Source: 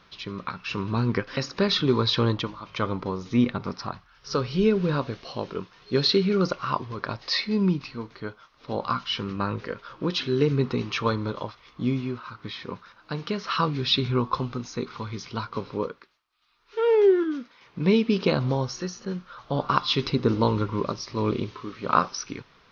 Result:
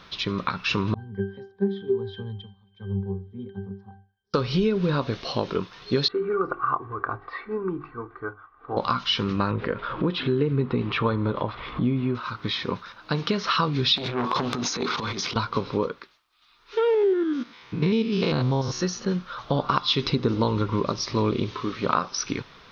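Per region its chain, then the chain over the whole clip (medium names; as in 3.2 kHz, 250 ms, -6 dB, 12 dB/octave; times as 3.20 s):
0.94–4.34 s: pitch-class resonator G, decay 0.37 s + three bands expanded up and down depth 70%
6.08–8.77 s: four-pole ladder low-pass 1.5 kHz, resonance 55% + hum notches 50/100/150/200/250/300/350/400 Hz + comb 2.6 ms, depth 73%
9.51–12.15 s: upward compressor, threshold -26 dBFS + distance through air 400 m
13.96–15.36 s: high-pass 220 Hz + transient shaper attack -11 dB, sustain +10 dB + transformer saturation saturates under 1.3 kHz
16.94–18.83 s: spectrogram pixelated in time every 100 ms + band-stop 580 Hz, Q 6.8
whole clip: peaking EQ 3.6 kHz +4 dB 0.25 oct; compression 4:1, threshold -28 dBFS; trim +7.5 dB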